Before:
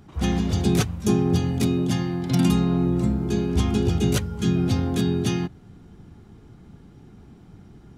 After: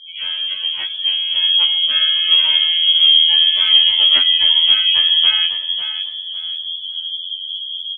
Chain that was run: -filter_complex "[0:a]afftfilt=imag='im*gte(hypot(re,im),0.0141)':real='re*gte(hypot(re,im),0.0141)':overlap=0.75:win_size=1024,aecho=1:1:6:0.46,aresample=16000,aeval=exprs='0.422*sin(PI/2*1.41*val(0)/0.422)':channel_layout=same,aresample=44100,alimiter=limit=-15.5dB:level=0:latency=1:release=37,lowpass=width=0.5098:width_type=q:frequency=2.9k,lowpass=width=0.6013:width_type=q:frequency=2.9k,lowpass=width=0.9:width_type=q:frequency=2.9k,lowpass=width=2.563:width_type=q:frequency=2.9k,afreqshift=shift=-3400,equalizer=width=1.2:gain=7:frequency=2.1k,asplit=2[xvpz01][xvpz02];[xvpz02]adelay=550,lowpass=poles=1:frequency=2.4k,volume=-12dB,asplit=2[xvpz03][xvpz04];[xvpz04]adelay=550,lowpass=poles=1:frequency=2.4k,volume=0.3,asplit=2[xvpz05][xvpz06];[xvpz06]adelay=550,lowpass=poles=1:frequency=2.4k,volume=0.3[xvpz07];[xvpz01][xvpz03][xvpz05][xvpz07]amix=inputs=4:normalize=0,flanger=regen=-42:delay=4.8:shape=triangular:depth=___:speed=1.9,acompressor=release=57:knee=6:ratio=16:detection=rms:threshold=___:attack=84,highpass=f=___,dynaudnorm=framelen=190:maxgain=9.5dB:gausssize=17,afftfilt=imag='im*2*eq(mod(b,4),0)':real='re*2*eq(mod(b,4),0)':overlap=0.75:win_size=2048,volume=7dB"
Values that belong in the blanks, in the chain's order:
4.9, -27dB, 86